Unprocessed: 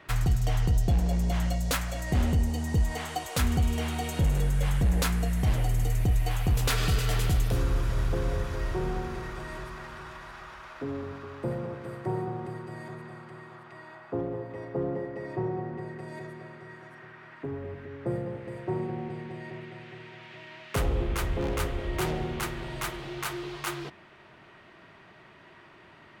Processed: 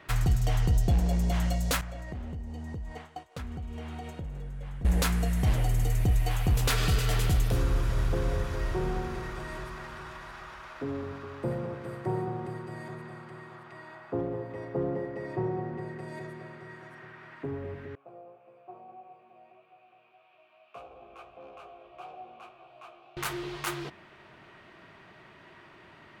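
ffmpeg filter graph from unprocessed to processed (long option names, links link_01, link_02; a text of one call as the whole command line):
ffmpeg -i in.wav -filter_complex "[0:a]asettb=1/sr,asplit=3[link_01][link_02][link_03];[link_01]atrim=end=1.814[link_04];[link_02]atrim=start=1.81:end=4.85,asetpts=PTS-STARTPTS,afade=type=in:duration=0.004:curve=qsin,afade=type=out:start_time=3.036:duration=0.004:curve=qsin,lowpass=frequency=1900:poles=1,agate=range=-33dB:threshold=-29dB:ratio=3:release=100:detection=peak,acompressor=threshold=-34dB:ratio=16:attack=3.2:release=140:knee=1:detection=peak[link_05];[link_03]atrim=start=4.846[link_06];[link_04][link_05]acrossfade=duration=0.004:curve1=hsin:curve2=qsin[link_07];[link_07][link_06]acrossfade=duration=0.004:curve1=qsin:curve2=hsin,asettb=1/sr,asplit=3[link_08][link_09][link_10];[link_08]atrim=end=17.954[link_11];[link_09]atrim=start=17.95:end=23.17,asetpts=PTS-STARTPTS,afade=type=in:duration=0.004:curve=qsin,afade=type=out:start_time=5.216:duration=0.004:curve=qsin,asoftclip=type=hard:threshold=-22.5dB,flanger=delay=15:depth=2.4:speed=1.7,asplit=3[link_12][link_13][link_14];[link_12]bandpass=frequency=730:width_type=q:width=8,volume=0dB[link_15];[link_13]bandpass=frequency=1090:width_type=q:width=8,volume=-6dB[link_16];[link_14]bandpass=frequency=2440:width_type=q:width=8,volume=-9dB[link_17];[link_15][link_16][link_17]amix=inputs=3:normalize=0[link_18];[link_10]atrim=start=23.166[link_19];[link_11][link_18]acrossfade=duration=0.004:curve1=hsin:curve2=qsin[link_20];[link_20][link_19]acrossfade=duration=0.004:curve1=qsin:curve2=hsin" out.wav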